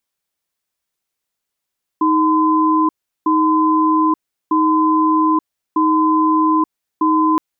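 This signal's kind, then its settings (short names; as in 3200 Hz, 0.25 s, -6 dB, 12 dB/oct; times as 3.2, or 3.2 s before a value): cadence 314 Hz, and 1020 Hz, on 0.88 s, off 0.37 s, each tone -14 dBFS 5.37 s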